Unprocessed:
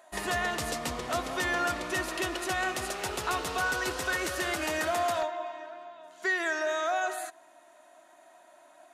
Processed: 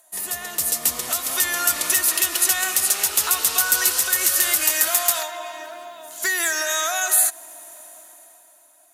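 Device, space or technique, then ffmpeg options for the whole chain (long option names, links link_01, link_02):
FM broadcast chain: -filter_complex "[0:a]highpass=75,dynaudnorm=framelen=100:gausssize=21:maxgain=16.5dB,acrossover=split=940|7500[link_01][link_02][link_03];[link_01]acompressor=threshold=-29dB:ratio=4[link_04];[link_02]acompressor=threshold=-17dB:ratio=4[link_05];[link_03]acompressor=threshold=-33dB:ratio=4[link_06];[link_04][link_05][link_06]amix=inputs=3:normalize=0,aemphasis=mode=production:type=50fm,alimiter=limit=-6dB:level=0:latency=1:release=395,asoftclip=type=hard:threshold=-10dB,lowpass=frequency=15000:width=0.5412,lowpass=frequency=15000:width=1.3066,aemphasis=mode=production:type=50fm,asettb=1/sr,asplit=3[link_07][link_08][link_09];[link_07]atrim=end=4.674[link_10];[link_08]atrim=start=4.67:end=5.28,asetpts=PTS-STARTPTS,afade=type=in:duration=0.004:curve=qsin,afade=type=out:start_time=0.606:duration=0.004:curve=qsin,highpass=frequency=150:poles=1[link_11];[link_09]atrim=start=5.276[link_12];[link_10][link_11]acrossfade=duration=0.004:curve1=hsin:curve2=qsin[link_13];[link_13][link_12]acrossfade=duration=0.004:curve1=qsin:curve2=hsin,volume=-7dB"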